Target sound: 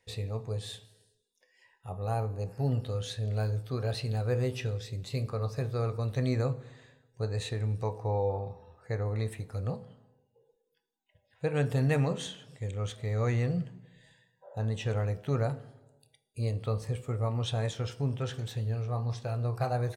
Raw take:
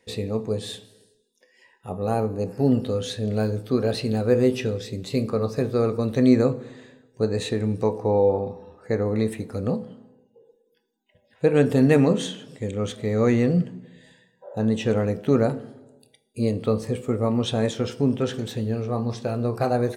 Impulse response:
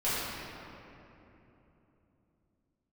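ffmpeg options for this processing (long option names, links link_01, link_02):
-af "firequalizer=gain_entry='entry(130,0);entry(210,-16);entry(710,-5)':delay=0.05:min_phase=1,volume=-2dB"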